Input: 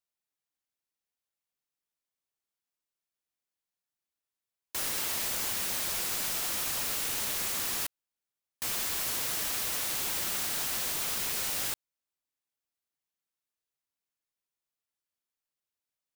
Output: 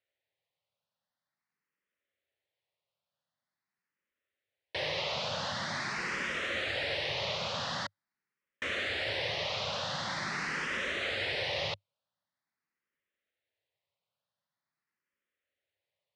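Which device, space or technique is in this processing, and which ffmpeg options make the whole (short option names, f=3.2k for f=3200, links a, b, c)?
barber-pole phaser into a guitar amplifier: -filter_complex "[0:a]asplit=2[a][b];[b]afreqshift=0.45[c];[a][c]amix=inputs=2:normalize=1,asoftclip=type=tanh:threshold=-30dB,highpass=79,equalizer=f=100:t=q:w=4:g=6,equalizer=f=150:t=q:w=4:g=5,equalizer=f=300:t=q:w=4:g=-4,equalizer=f=560:t=q:w=4:g=9,equalizer=f=1.9k:t=q:w=4:g=6,lowpass=f=4.2k:w=0.5412,lowpass=f=4.2k:w=1.3066,volume=7.5dB"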